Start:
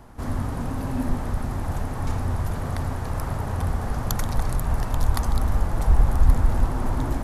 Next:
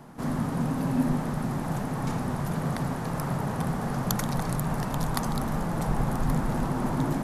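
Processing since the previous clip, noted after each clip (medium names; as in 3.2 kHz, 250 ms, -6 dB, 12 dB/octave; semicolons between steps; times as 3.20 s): resonant low shelf 110 Hz -12 dB, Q 3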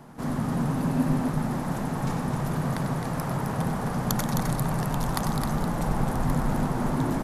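loudspeakers at several distances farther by 33 m -9 dB, 90 m -6 dB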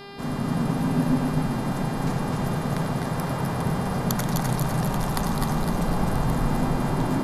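echo whose repeats swap between lows and highs 126 ms, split 810 Hz, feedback 72%, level -3 dB; mains buzz 400 Hz, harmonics 13, -42 dBFS -4 dB/octave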